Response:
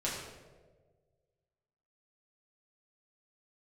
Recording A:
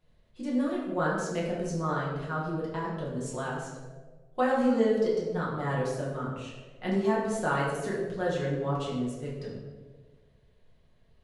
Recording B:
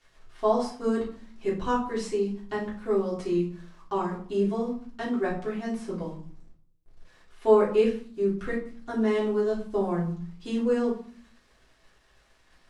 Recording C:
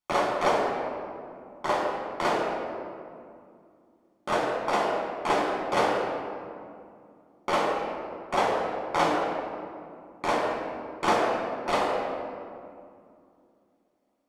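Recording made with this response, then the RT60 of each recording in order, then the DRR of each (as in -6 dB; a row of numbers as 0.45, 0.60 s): A; 1.5, 0.50, 2.4 s; -7.0, -7.5, -3.0 dB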